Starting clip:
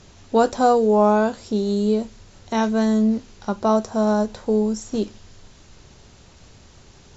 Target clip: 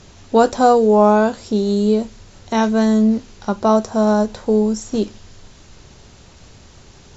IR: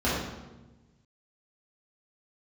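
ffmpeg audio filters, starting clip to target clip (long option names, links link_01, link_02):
-af "volume=4dB"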